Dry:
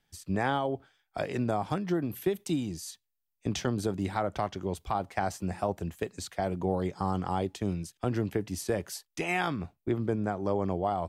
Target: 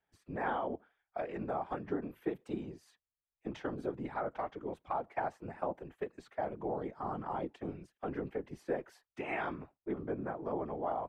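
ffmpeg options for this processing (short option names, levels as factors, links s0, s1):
-filter_complex "[0:a]acrossover=split=240 2400:gain=0.2 1 0.0708[s0][s1][s2];[s0][s1][s2]amix=inputs=3:normalize=0,afftfilt=real='hypot(re,im)*cos(2*PI*random(0))':imag='hypot(re,im)*sin(2*PI*random(1))':win_size=512:overlap=0.75,volume=1.12"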